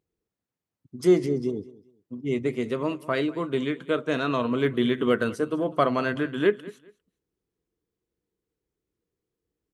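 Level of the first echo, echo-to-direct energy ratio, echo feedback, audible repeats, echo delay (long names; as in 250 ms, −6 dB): −20.0 dB, −20.0 dB, 24%, 2, 201 ms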